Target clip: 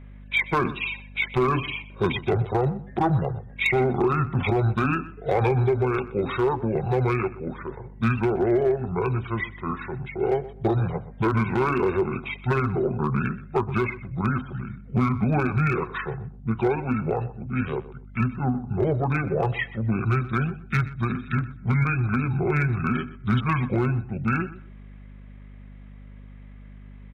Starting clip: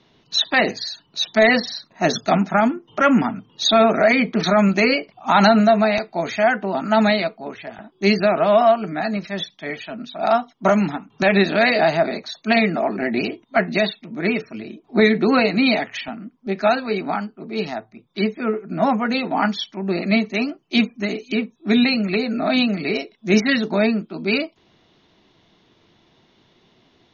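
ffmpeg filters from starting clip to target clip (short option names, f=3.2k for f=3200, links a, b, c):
-filter_complex "[0:a]equalizer=f=72:t=o:w=0.42:g=-3.5,acompressor=threshold=-20dB:ratio=3,asetrate=25476,aresample=44100,atempo=1.73107,volume=14.5dB,asoftclip=hard,volume=-14.5dB,aeval=exprs='val(0)+0.00794*(sin(2*PI*50*n/s)+sin(2*PI*2*50*n/s)/2+sin(2*PI*3*50*n/s)/3+sin(2*PI*4*50*n/s)/4+sin(2*PI*5*50*n/s)/5)':c=same,asplit=2[a][b];[b]adelay=125,lowpass=f=2.7k:p=1,volume=-16dB,asplit=2[c][d];[d]adelay=125,lowpass=f=2.7k:p=1,volume=0.22[e];[c][e]amix=inputs=2:normalize=0[f];[a][f]amix=inputs=2:normalize=0"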